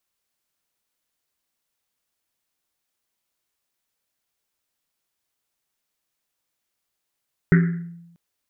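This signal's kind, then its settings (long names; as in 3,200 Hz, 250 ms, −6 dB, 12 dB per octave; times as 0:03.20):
drum after Risset length 0.64 s, pitch 170 Hz, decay 0.95 s, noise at 1,700 Hz, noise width 630 Hz, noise 15%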